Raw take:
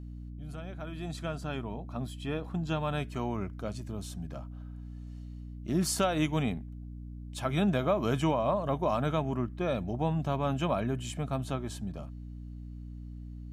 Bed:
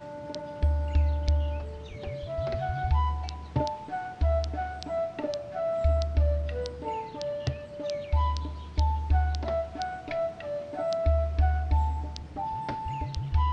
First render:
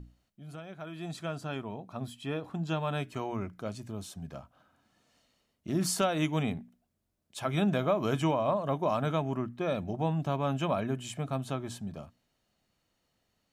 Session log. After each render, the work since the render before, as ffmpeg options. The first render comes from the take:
-af "bandreject=f=60:t=h:w=6,bandreject=f=120:t=h:w=6,bandreject=f=180:t=h:w=6,bandreject=f=240:t=h:w=6,bandreject=f=300:t=h:w=6"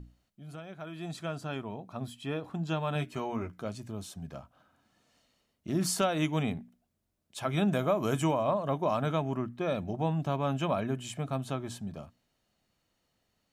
-filter_complex "[0:a]asettb=1/sr,asplit=3[s0][s1][s2];[s0]atrim=end=2.944[s3];[s1]atrim=start=2.94:end=3.65,asetpts=PTS-STARTPTS,afade=t=in:d=0.004:c=qsin,afade=t=out:st=0.706:d=0.004:c=qsin,asplit=2[s4][s5];[s5]adelay=13,volume=0.473[s6];[s4][s6]amix=inputs=2:normalize=0,atrim=end_sample=31311[s7];[s2]atrim=start=3.646[s8];[s3][s7]acrossfade=d=0.004:c1=hsin:c2=qsin[s9];[s9][s8]acrossfade=d=0.004:c1=qsin:c2=hsin,asettb=1/sr,asplit=3[s10][s11][s12];[s10]atrim=end=7.724[s13];[s11]atrim=start=7.72:end=8.44,asetpts=PTS-STARTPTS,afade=t=in:d=0.004:c=qsin,afade=t=out:st=0.716:d=0.004:c=qsin,highshelf=f=6100:t=q:w=1.5:g=6.5[s14];[s12]atrim=start=8.436[s15];[s13][s14]acrossfade=d=0.004:c1=hsin:c2=qsin[s16];[s16][s15]acrossfade=d=0.004:c1=qsin:c2=hsin"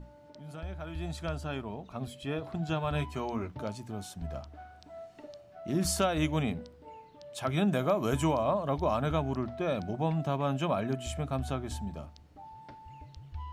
-filter_complex "[1:a]volume=0.158[s0];[0:a][s0]amix=inputs=2:normalize=0"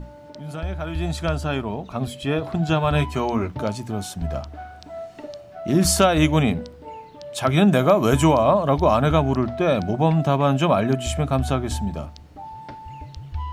-af "volume=3.76"

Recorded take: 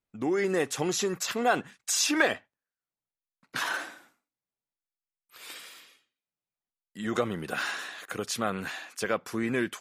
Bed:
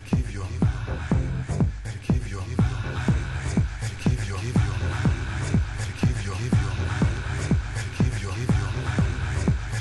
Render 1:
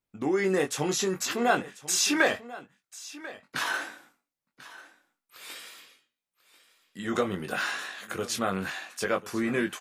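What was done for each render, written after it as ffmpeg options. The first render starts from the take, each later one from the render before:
-filter_complex "[0:a]asplit=2[s0][s1];[s1]adelay=21,volume=0.531[s2];[s0][s2]amix=inputs=2:normalize=0,aecho=1:1:1041:0.133"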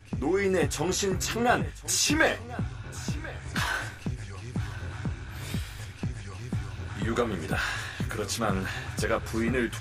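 -filter_complex "[1:a]volume=0.299[s0];[0:a][s0]amix=inputs=2:normalize=0"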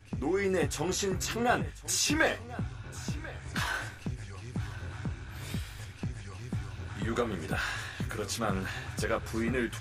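-af "volume=0.668"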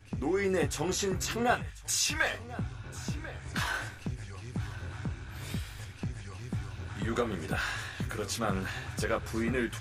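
-filter_complex "[0:a]asettb=1/sr,asplit=3[s0][s1][s2];[s0]atrim=end=1.544[s3];[s1]atrim=start=1.54:end=2.34,asetpts=PTS-STARTPTS,afade=t=in:d=0.004:c=qsin,afade=t=out:st=0.796:d=0.004:c=qsin,equalizer=f=320:t=o:w=1.7:g=-13.5[s4];[s2]atrim=start=2.336[s5];[s3][s4]acrossfade=d=0.004:c1=hsin:c2=qsin[s6];[s6][s5]acrossfade=d=0.004:c1=qsin:c2=hsin"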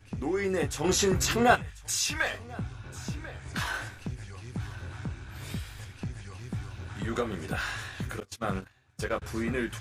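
-filter_complex "[0:a]asettb=1/sr,asplit=3[s0][s1][s2];[s0]atrim=end=0.844[s3];[s1]atrim=start=0.84:end=1.56,asetpts=PTS-STARTPTS,afade=t=in:d=0.004:c=qsin,afade=t=out:st=0.716:d=0.004:c=qsin,acontrast=54[s4];[s2]atrim=start=1.556[s5];[s3][s4]acrossfade=d=0.004:c1=hsin:c2=qsin[s6];[s6][s5]acrossfade=d=0.004:c1=qsin:c2=hsin,asettb=1/sr,asplit=3[s7][s8][s9];[s7]atrim=end=8.204[s10];[s8]atrim=start=8.2:end=9.22,asetpts=PTS-STARTPTS,afade=t=in:d=0.004:c=qsin,afade=t=out:st=1.016:d=0.004:c=qsin,agate=range=0.0447:threshold=0.0224:ratio=16:release=100:detection=peak[s11];[s9]atrim=start=9.216[s12];[s10][s11]acrossfade=d=0.004:c1=hsin:c2=qsin[s13];[s13][s12]acrossfade=d=0.004:c1=qsin:c2=hsin"

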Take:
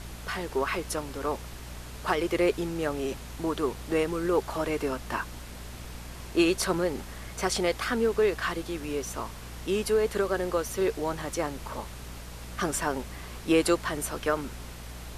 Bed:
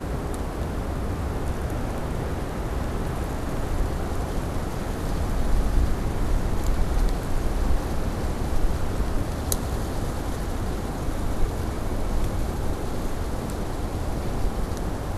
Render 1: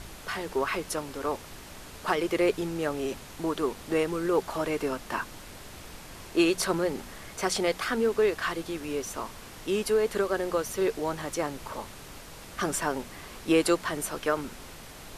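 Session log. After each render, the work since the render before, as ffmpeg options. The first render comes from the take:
-af "bandreject=f=60:t=h:w=4,bandreject=f=120:t=h:w=4,bandreject=f=180:t=h:w=4,bandreject=f=240:t=h:w=4"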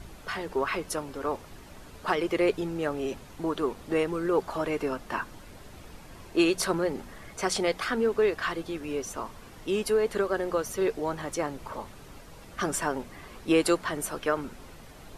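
-af "afftdn=nr=8:nf=-46"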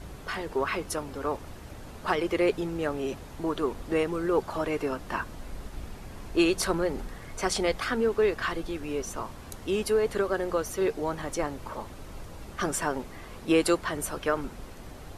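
-filter_complex "[1:a]volume=0.126[s0];[0:a][s0]amix=inputs=2:normalize=0"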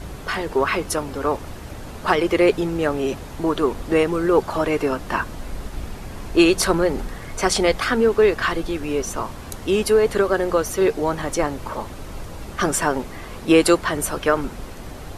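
-af "volume=2.66"

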